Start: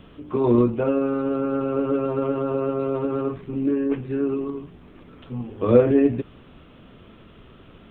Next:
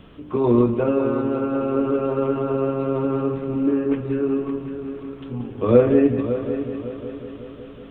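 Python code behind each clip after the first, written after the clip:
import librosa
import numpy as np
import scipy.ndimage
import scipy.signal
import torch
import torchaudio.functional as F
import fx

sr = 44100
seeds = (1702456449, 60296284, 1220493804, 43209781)

y = fx.echo_heads(x, sr, ms=185, heads='first and third', feedback_pct=59, wet_db=-11.5)
y = y * 10.0 ** (1.0 / 20.0)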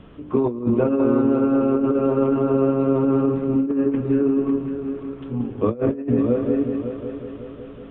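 y = fx.lowpass(x, sr, hz=2000.0, slope=6)
y = fx.dynamic_eq(y, sr, hz=250.0, q=1.6, threshold_db=-32.0, ratio=4.0, max_db=5)
y = fx.over_compress(y, sr, threshold_db=-18.0, ratio=-0.5)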